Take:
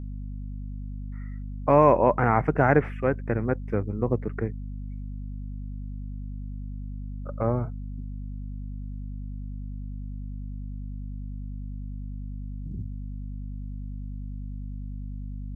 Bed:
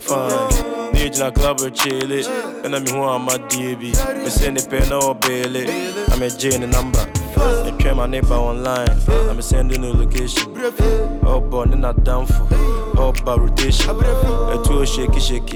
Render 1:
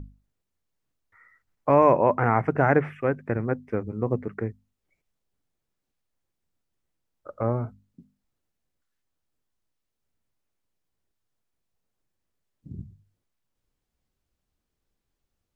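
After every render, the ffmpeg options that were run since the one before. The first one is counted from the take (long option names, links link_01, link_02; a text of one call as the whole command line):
ffmpeg -i in.wav -af "bandreject=frequency=50:width_type=h:width=6,bandreject=frequency=100:width_type=h:width=6,bandreject=frequency=150:width_type=h:width=6,bandreject=frequency=200:width_type=h:width=6,bandreject=frequency=250:width_type=h:width=6" out.wav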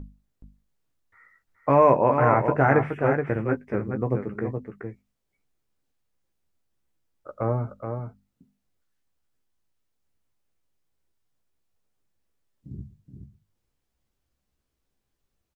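ffmpeg -i in.wav -filter_complex "[0:a]asplit=2[link_01][link_02];[link_02]adelay=15,volume=-8dB[link_03];[link_01][link_03]amix=inputs=2:normalize=0,asplit=2[link_04][link_05];[link_05]aecho=0:1:423:0.473[link_06];[link_04][link_06]amix=inputs=2:normalize=0" out.wav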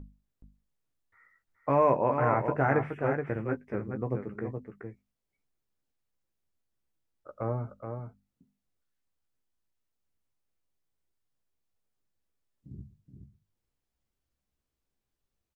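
ffmpeg -i in.wav -af "volume=-6.5dB" out.wav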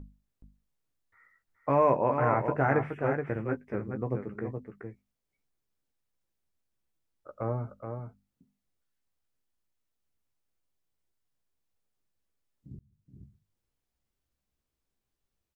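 ffmpeg -i in.wav -filter_complex "[0:a]asplit=2[link_01][link_02];[link_01]atrim=end=12.79,asetpts=PTS-STARTPTS,afade=type=out:start_time=12.786:duration=0.004:curve=hsin[link_03];[link_02]atrim=start=12.79,asetpts=PTS-STARTPTS,afade=type=in:duration=0.42[link_04];[link_03][link_04]concat=n=2:v=0:a=1" out.wav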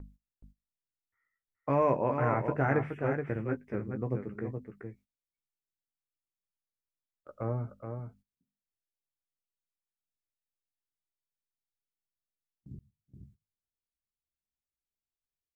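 ffmpeg -i in.wav -af "agate=range=-17dB:threshold=-57dB:ratio=16:detection=peak,equalizer=frequency=880:width_type=o:width=1.8:gain=-4.5" out.wav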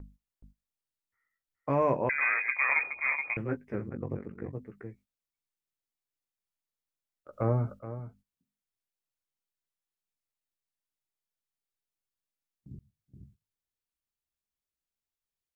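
ffmpeg -i in.wav -filter_complex "[0:a]asettb=1/sr,asplit=3[link_01][link_02][link_03];[link_01]atrim=end=2.094[link_04];[link_02]atrim=start=2.09:end=3.37,asetpts=PTS-STARTPTS,afade=type=in:duration=0.004:curve=qsin,afade=type=out:start_time=1.276:duration=0.004:curve=qsin,lowpass=frequency=2200:width_type=q:width=0.5098,lowpass=frequency=2200:width_type=q:width=0.6013,lowpass=frequency=2200:width_type=q:width=0.9,lowpass=frequency=2200:width_type=q:width=2.563,afreqshift=-2600[link_05];[link_03]atrim=start=3.366[link_06];[link_04][link_05]acrossfade=duration=0.004:curve1=hsin:curve2=qsin[link_07];[link_07][link_06]acrossfade=duration=0.004:curve1=qsin:curve2=hsin,asplit=3[link_08][link_09][link_10];[link_08]afade=type=out:start_time=3.89:duration=0.02[link_11];[link_09]aeval=exprs='val(0)*sin(2*PI*23*n/s)':channel_layout=same,afade=type=in:start_time=3.89:duration=0.02,afade=type=out:start_time=4.53:duration=0.02[link_12];[link_10]afade=type=in:start_time=4.53:duration=0.02[link_13];[link_11][link_12][link_13]amix=inputs=3:normalize=0,asplit=3[link_14][link_15][link_16];[link_14]afade=type=out:start_time=7.32:duration=0.02[link_17];[link_15]acontrast=51,afade=type=in:start_time=7.32:duration=0.02,afade=type=out:start_time=7.78:duration=0.02[link_18];[link_16]afade=type=in:start_time=7.78:duration=0.02[link_19];[link_17][link_18][link_19]amix=inputs=3:normalize=0" out.wav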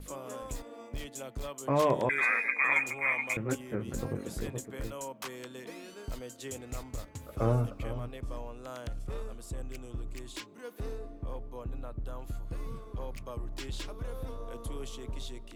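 ffmpeg -i in.wav -i bed.wav -filter_complex "[1:a]volume=-23.5dB[link_01];[0:a][link_01]amix=inputs=2:normalize=0" out.wav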